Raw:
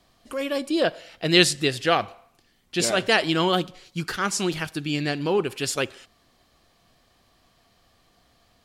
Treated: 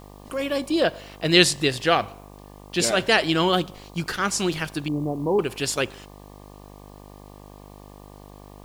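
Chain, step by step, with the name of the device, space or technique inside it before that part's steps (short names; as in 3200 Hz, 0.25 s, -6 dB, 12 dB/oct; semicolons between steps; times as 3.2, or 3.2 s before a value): 4.88–5.39 elliptic low-pass 990 Hz; video cassette with head-switching buzz (buzz 50 Hz, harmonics 24, -46 dBFS -3 dB/oct; white noise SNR 34 dB); gain +1 dB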